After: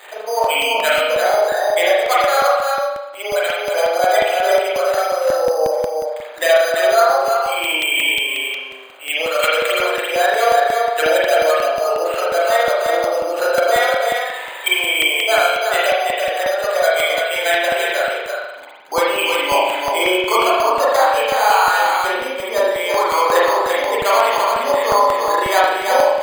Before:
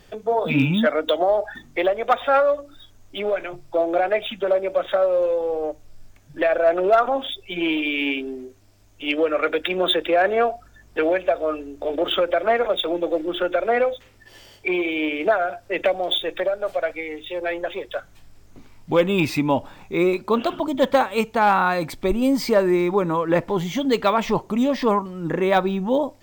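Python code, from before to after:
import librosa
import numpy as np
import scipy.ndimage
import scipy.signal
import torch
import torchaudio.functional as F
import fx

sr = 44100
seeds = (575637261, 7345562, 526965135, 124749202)

p1 = x + 0.5 * 10.0 ** (-35.0 / 20.0) * np.sign(x)
p2 = fx.spec_gate(p1, sr, threshold_db=-30, keep='strong')
p3 = scipy.signal.sosfilt(scipy.signal.butter(4, 560.0, 'highpass', fs=sr, output='sos'), p2)
p4 = fx.peak_eq(p3, sr, hz=4800.0, db=13.5, octaves=0.42)
p5 = fx.rider(p4, sr, range_db=4, speed_s=0.5)
p6 = fx.high_shelf(p5, sr, hz=2700.0, db=9.0)
p7 = p6 + fx.echo_single(p6, sr, ms=338, db=-4.0, dry=0)
p8 = np.repeat(scipy.signal.resample_poly(p7, 1, 8), 8)[:len(p7)]
p9 = fx.rev_spring(p8, sr, rt60_s=1.0, pass_ms=(38,), chirp_ms=45, drr_db=-6.5)
p10 = fx.buffer_crackle(p9, sr, first_s=0.44, period_s=0.18, block=64, kind='repeat')
y = F.gain(torch.from_numpy(p10), -1.0).numpy()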